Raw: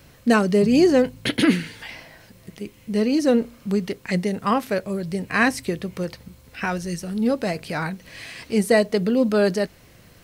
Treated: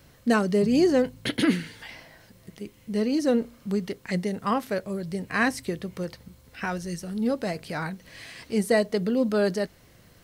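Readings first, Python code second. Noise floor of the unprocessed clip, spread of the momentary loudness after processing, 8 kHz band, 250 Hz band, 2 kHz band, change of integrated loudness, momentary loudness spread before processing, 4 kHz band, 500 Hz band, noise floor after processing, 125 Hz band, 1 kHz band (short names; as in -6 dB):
-51 dBFS, 14 LU, -4.5 dB, -4.5 dB, -5.0 dB, -4.5 dB, 18 LU, -5.0 dB, -4.5 dB, -56 dBFS, -4.5 dB, -4.5 dB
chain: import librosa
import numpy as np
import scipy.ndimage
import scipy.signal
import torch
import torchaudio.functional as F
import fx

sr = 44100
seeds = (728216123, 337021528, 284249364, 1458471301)

y = fx.peak_eq(x, sr, hz=2500.0, db=-4.0, octaves=0.23)
y = y * 10.0 ** (-4.5 / 20.0)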